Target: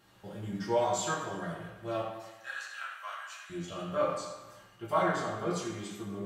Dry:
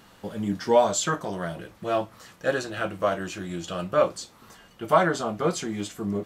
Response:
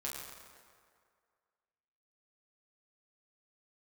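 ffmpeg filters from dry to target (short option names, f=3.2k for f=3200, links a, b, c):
-filter_complex "[0:a]asettb=1/sr,asplit=3[a][b][c];[a]atrim=end=2.024[d];[b]atrim=start=2.02:end=3.5,asetpts=PTS-STARTPTS,afade=t=in:d=0.004:c=qsin,afade=t=out:st=1.476:d=0.004:c=qsin,highpass=f=1.1k:w=0.5412,highpass=f=1.1k:w=1.3066[e];[c]atrim=start=3.496[f];[d][e]acrossfade=d=0.004:c1=hsin:c2=qsin[g];[g][f]acrossfade=d=0.004:c1=qsin:c2=hsin[h];[1:a]atrim=start_sample=2205,asetrate=74970,aresample=44100[i];[h][i]afir=irnorm=-1:irlink=0,volume=-3.5dB"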